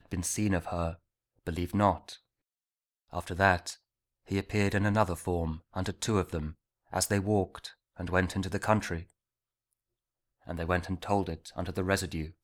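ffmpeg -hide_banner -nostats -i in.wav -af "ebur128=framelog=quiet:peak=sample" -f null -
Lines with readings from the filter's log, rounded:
Integrated loudness:
  I:         -31.1 LUFS
  Threshold: -41.8 LUFS
Loudness range:
  LRA:         3.7 LU
  Threshold: -52.4 LUFS
  LRA low:   -34.6 LUFS
  LRA high:  -30.9 LUFS
Sample peak:
  Peak:       -9.4 dBFS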